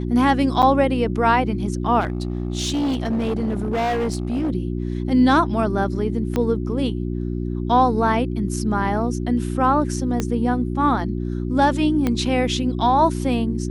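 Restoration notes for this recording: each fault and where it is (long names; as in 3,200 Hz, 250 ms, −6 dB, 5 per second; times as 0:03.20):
mains hum 60 Hz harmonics 6 −25 dBFS
0:00.62–0:00.63: drop-out 7.7 ms
0:02.00–0:04.50: clipping −18.5 dBFS
0:06.36: click −10 dBFS
0:10.20: click −9 dBFS
0:12.07: click −9 dBFS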